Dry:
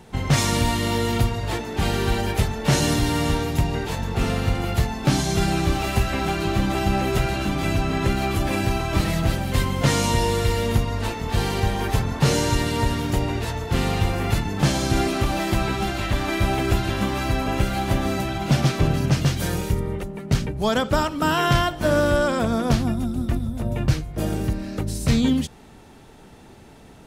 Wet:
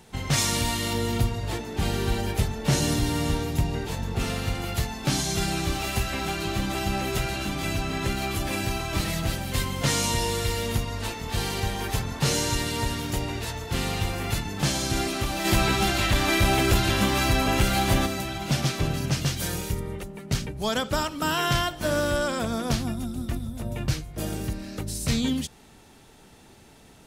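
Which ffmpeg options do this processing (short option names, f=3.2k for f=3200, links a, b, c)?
-filter_complex "[0:a]asettb=1/sr,asplit=3[a][b][c];[a]atrim=end=0.934[d];[b]atrim=start=0.93:end=4.2,asetpts=PTS-STARTPTS,afade=t=in:d=0.004:c=qsin,afade=t=out:st=3.266:d=0.004:c=qsin,tiltshelf=f=770:g=3.5[e];[c]atrim=start=4.196[f];[d][e]acrossfade=d=0.004:c1=hsin:c2=qsin[g];[g][f]acrossfade=d=0.004:c1=qsin:c2=hsin,asplit=3[h][i][j];[h]afade=t=out:st=15.44:d=0.02[k];[i]aeval=exprs='0.447*sin(PI/2*1.41*val(0)/0.447)':c=same,afade=t=in:st=15.44:d=0.02,afade=t=out:st=18.05:d=0.02[l];[j]afade=t=in:st=18.05:d=0.02[m];[k][l][m]amix=inputs=3:normalize=0,highshelf=f=2.4k:g=8.5,volume=-6.5dB"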